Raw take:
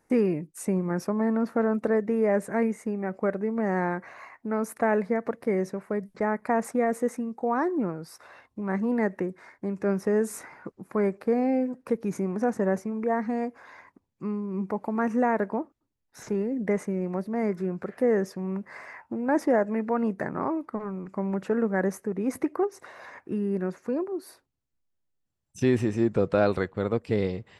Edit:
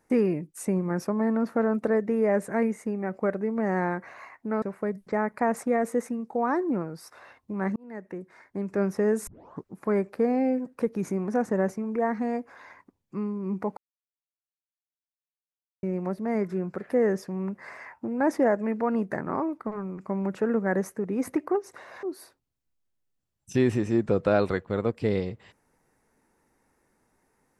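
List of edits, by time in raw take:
0:04.62–0:05.70: remove
0:08.84–0:09.76: fade in
0:10.35: tape start 0.37 s
0:14.85–0:16.91: silence
0:23.11–0:24.10: remove

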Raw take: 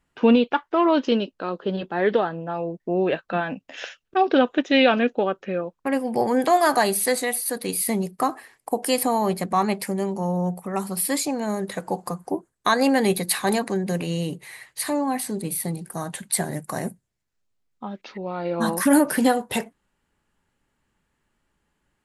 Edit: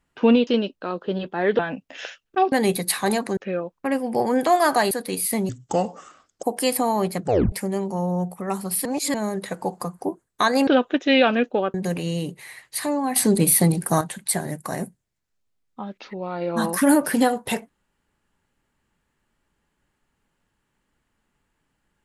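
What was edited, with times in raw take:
0:00.47–0:01.05: remove
0:02.17–0:03.38: remove
0:04.31–0:05.38: swap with 0:12.93–0:13.78
0:06.92–0:07.47: remove
0:08.05–0:08.69: play speed 68%
0:09.46: tape stop 0.32 s
0:11.11–0:11.40: reverse
0:15.20–0:16.05: clip gain +10.5 dB

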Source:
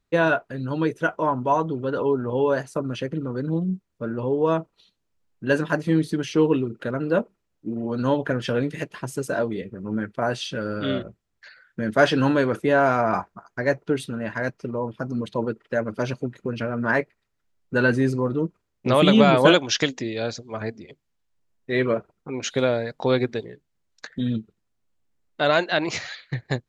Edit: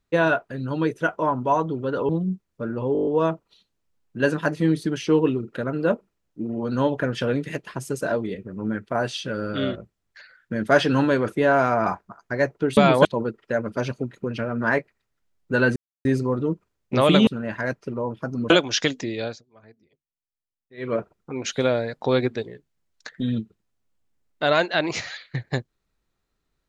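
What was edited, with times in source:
0:02.09–0:03.50: remove
0:04.34: stutter 0.02 s, 8 plays
0:14.04–0:15.27: swap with 0:19.20–0:19.48
0:17.98: splice in silence 0.29 s
0:20.18–0:21.97: duck −21.5 dB, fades 0.22 s

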